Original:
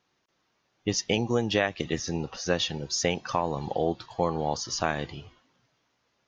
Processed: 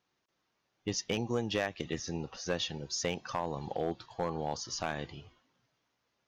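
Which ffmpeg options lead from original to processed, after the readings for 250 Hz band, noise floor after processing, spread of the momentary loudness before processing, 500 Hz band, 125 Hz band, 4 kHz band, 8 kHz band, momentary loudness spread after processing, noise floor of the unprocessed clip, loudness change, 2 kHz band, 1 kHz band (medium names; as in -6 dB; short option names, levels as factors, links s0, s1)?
-7.0 dB, -81 dBFS, 6 LU, -7.0 dB, -7.0 dB, -6.5 dB, -6.5 dB, 6 LU, -74 dBFS, -7.0 dB, -7.5 dB, -7.5 dB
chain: -af "asoftclip=type=hard:threshold=0.15,volume=0.473"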